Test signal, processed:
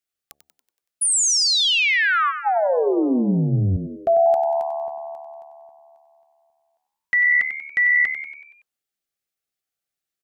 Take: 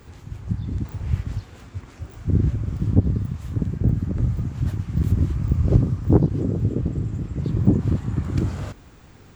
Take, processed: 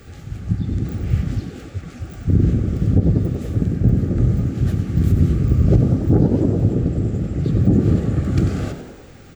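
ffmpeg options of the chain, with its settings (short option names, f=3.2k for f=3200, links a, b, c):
-filter_complex "[0:a]asuperstop=centerf=970:order=20:qfactor=3.7,bandreject=f=72.33:t=h:w=4,bandreject=f=144.66:t=h:w=4,bandreject=f=216.99:t=h:w=4,bandreject=f=289.32:t=h:w=4,bandreject=f=361.65:t=h:w=4,bandreject=f=433.98:t=h:w=4,bandreject=f=506.31:t=h:w=4,bandreject=f=578.64:t=h:w=4,bandreject=f=650.97:t=h:w=4,bandreject=f=723.3:t=h:w=4,asplit=7[a][b][c][d][e][f][g];[b]adelay=94,afreqshift=74,volume=-10dB[h];[c]adelay=188,afreqshift=148,volume=-15.5dB[i];[d]adelay=282,afreqshift=222,volume=-21dB[j];[e]adelay=376,afreqshift=296,volume=-26.5dB[k];[f]adelay=470,afreqshift=370,volume=-32.1dB[l];[g]adelay=564,afreqshift=444,volume=-37.6dB[m];[a][h][i][j][k][l][m]amix=inputs=7:normalize=0,alimiter=level_in=8.5dB:limit=-1dB:release=50:level=0:latency=1,volume=-3.5dB"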